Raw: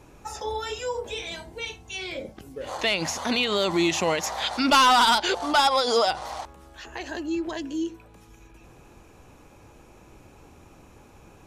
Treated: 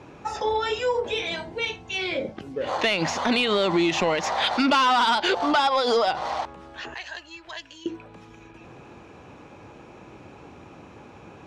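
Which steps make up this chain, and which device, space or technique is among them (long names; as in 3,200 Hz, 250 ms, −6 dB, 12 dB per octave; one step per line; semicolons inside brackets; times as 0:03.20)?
AM radio (band-pass filter 110–3,900 Hz; downward compressor 6 to 1, threshold −24 dBFS, peak gain reduction 8.5 dB; soft clipping −18.5 dBFS, distortion −23 dB)
0:06.94–0:07.86: guitar amp tone stack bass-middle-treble 10-0-10
level +7 dB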